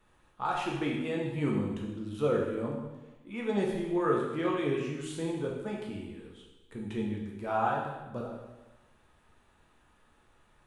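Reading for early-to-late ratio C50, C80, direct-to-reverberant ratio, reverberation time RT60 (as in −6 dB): 2.5 dB, 5.0 dB, −2.5 dB, 1.1 s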